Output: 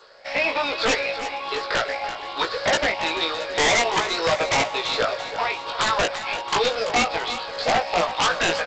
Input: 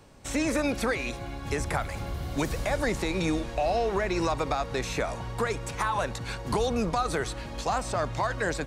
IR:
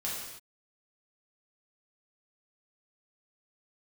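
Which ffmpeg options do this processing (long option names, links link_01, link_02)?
-filter_complex "[0:a]afftfilt=real='re*pow(10,13/40*sin(2*PI*(0.6*log(max(b,1)*sr/1024/100)/log(2)-(1.2)*(pts-256)/sr)))':imag='im*pow(10,13/40*sin(2*PI*(0.6*log(max(b,1)*sr/1024/100)/log(2)-(1.2)*(pts-256)/sr)))':win_size=1024:overlap=0.75,highpass=frequency=560:width=0.5412,highpass=frequency=560:width=1.3066,equalizer=frequency=1800:width=1.4:gain=-3,aresample=11025,acrusher=bits=2:mode=log:mix=0:aa=0.000001,aresample=44100,aeval=exprs='(mod(11.2*val(0)+1,2)-1)/11.2':channel_layout=same,asplit=2[link_01][link_02];[link_02]adelay=18,volume=-3dB[link_03];[link_01][link_03]amix=inputs=2:normalize=0,aecho=1:1:336|672|1008|1344|1680:0.251|0.123|0.0603|0.0296|0.0145,volume=7dB" -ar 16000 -c:a g722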